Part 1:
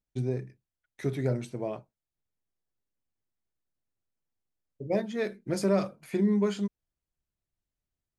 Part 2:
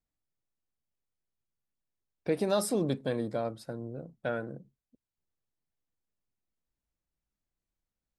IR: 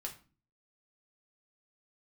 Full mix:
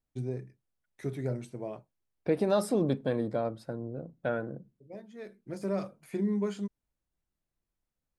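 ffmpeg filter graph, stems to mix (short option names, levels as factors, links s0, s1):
-filter_complex "[0:a]deesser=0.95,equalizer=f=9800:t=o:w=1.4:g=10.5,volume=0.596[s0];[1:a]volume=1.19,asplit=3[s1][s2][s3];[s2]volume=0.106[s4];[s3]apad=whole_len=360744[s5];[s0][s5]sidechaincompress=threshold=0.00501:ratio=10:attack=8.8:release=1090[s6];[2:a]atrim=start_sample=2205[s7];[s4][s7]afir=irnorm=-1:irlink=0[s8];[s6][s1][s8]amix=inputs=3:normalize=0,highshelf=f=3000:g=-9.5"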